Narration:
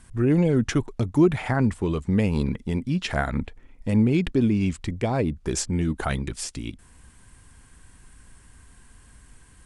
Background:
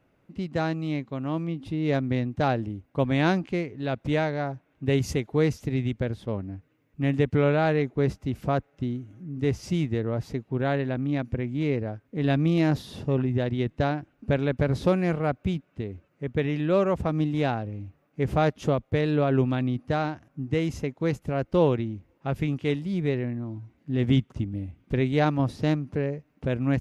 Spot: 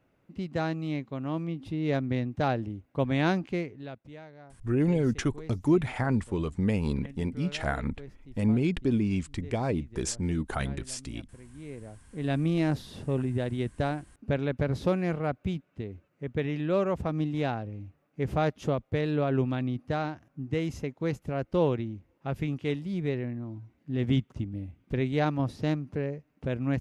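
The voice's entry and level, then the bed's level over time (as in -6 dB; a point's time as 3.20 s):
4.50 s, -5.0 dB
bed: 3.66 s -3 dB
4.11 s -21.5 dB
11.39 s -21.5 dB
12.38 s -4 dB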